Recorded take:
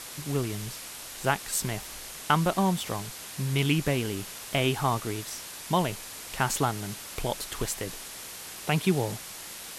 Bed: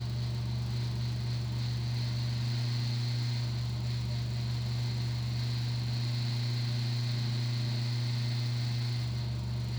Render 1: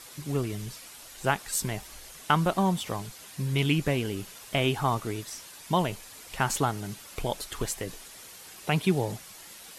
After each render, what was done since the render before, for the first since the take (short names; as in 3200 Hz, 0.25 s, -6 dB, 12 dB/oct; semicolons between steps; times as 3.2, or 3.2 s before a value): denoiser 8 dB, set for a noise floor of -42 dBFS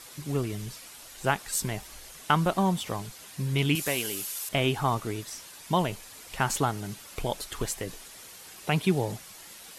3.75–4.49 RIAA curve recording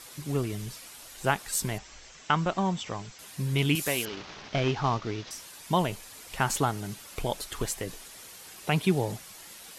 1.78–3.19 rippled Chebyshev low-pass 7700 Hz, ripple 3 dB; 4.05–5.31 CVSD 32 kbps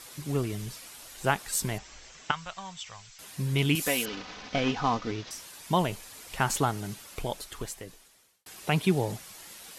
2.31–3.19 passive tone stack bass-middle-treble 10-0-10; 3.8–5.12 comb 4 ms, depth 58%; 6.88–8.46 fade out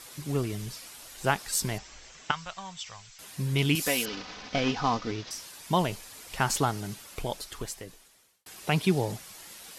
dynamic EQ 5000 Hz, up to +5 dB, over -51 dBFS, Q 2.4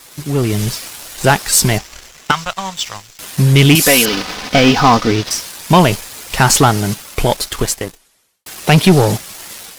sample leveller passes 3; AGC gain up to 11.5 dB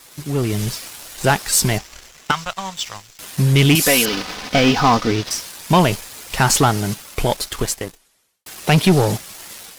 gain -4.5 dB